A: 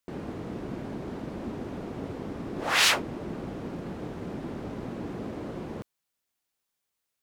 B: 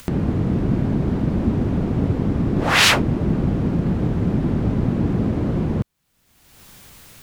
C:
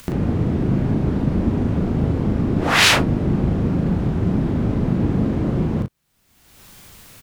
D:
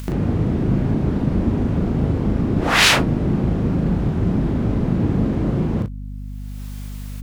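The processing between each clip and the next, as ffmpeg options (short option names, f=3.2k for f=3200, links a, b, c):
-af "bass=f=250:g=14,treble=f=4k:g=-3,acompressor=mode=upward:threshold=-28dB:ratio=2.5,volume=8dB"
-af "aecho=1:1:38|60:0.668|0.141,volume=-1dB"
-af "aeval=exprs='val(0)+0.0355*(sin(2*PI*50*n/s)+sin(2*PI*2*50*n/s)/2+sin(2*PI*3*50*n/s)/3+sin(2*PI*4*50*n/s)/4+sin(2*PI*5*50*n/s)/5)':c=same"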